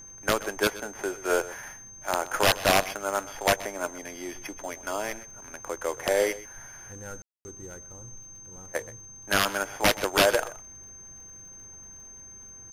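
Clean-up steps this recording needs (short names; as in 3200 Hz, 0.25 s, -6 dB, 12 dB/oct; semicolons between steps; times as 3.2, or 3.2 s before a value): de-click; notch 6300 Hz, Q 30; room tone fill 7.22–7.45; inverse comb 0.126 s -17 dB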